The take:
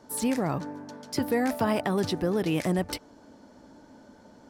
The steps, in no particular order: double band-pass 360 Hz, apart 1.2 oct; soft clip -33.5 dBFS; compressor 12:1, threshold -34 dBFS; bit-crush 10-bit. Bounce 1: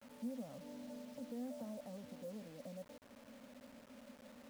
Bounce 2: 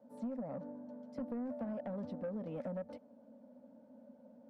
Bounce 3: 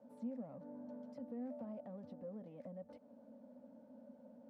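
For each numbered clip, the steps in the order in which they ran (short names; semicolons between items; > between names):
compressor > soft clip > double band-pass > bit-crush; bit-crush > double band-pass > compressor > soft clip; bit-crush > compressor > soft clip > double band-pass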